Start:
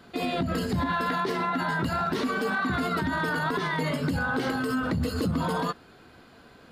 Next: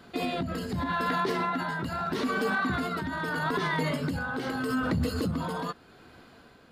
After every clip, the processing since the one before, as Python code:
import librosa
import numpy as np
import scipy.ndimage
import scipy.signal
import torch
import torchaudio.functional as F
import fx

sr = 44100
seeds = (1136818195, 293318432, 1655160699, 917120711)

y = x * (1.0 - 0.46 / 2.0 + 0.46 / 2.0 * np.cos(2.0 * np.pi * 0.81 * (np.arange(len(x)) / sr)))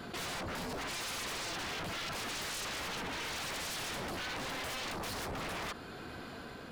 y = 10.0 ** (-35.0 / 20.0) * (np.abs((x / 10.0 ** (-35.0 / 20.0) + 3.0) % 4.0 - 2.0) - 1.0)
y = fx.env_flatten(y, sr, amount_pct=50)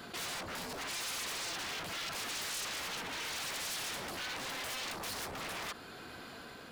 y = fx.tilt_eq(x, sr, slope=1.5)
y = y * librosa.db_to_amplitude(-2.0)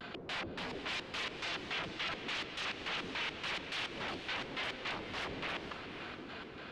y = fx.filter_lfo_lowpass(x, sr, shape='square', hz=3.5, low_hz=390.0, high_hz=3000.0, q=1.5)
y = fx.vibrato(y, sr, rate_hz=0.3, depth_cents=23.0)
y = fx.echo_diffused(y, sr, ms=498, feedback_pct=47, wet_db=-8.5)
y = y * librosa.db_to_amplitude(1.0)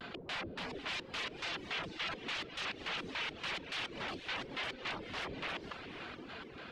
y = fx.dereverb_blind(x, sr, rt60_s=0.5)